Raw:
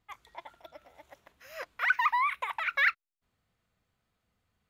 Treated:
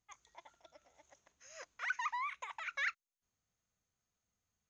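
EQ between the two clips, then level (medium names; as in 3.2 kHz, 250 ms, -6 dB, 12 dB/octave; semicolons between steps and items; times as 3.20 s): four-pole ladder low-pass 6.7 kHz, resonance 85%; +1.0 dB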